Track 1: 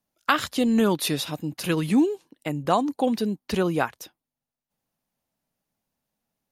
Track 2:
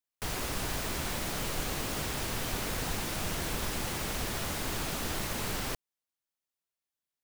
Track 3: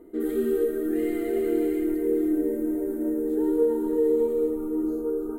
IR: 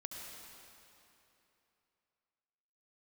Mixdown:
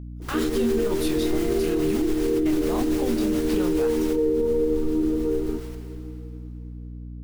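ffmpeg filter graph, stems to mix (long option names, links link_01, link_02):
-filter_complex "[0:a]flanger=delay=22.5:depth=5.7:speed=2,alimiter=limit=-20dB:level=0:latency=1,volume=-1.5dB,asplit=2[link_01][link_02];[1:a]tremolo=f=7.1:d=0.45,volume=-1dB,asplit=2[link_03][link_04];[link_04]volume=-11dB[link_05];[2:a]aemphasis=mode=reproduction:type=bsi,adelay=200,volume=-2dB,asplit=2[link_06][link_07];[link_07]volume=-3.5dB[link_08];[link_02]apad=whole_len=319146[link_09];[link_03][link_09]sidechaingate=range=-19dB:threshold=-55dB:ratio=16:detection=peak[link_10];[3:a]atrim=start_sample=2205[link_11];[link_05][link_08]amix=inputs=2:normalize=0[link_12];[link_12][link_11]afir=irnorm=-1:irlink=0[link_13];[link_01][link_10][link_06][link_13]amix=inputs=4:normalize=0,aeval=exprs='val(0)+0.0178*(sin(2*PI*60*n/s)+sin(2*PI*2*60*n/s)/2+sin(2*PI*3*60*n/s)/3+sin(2*PI*4*60*n/s)/4+sin(2*PI*5*60*n/s)/5)':channel_layout=same,alimiter=limit=-14.5dB:level=0:latency=1:release=47"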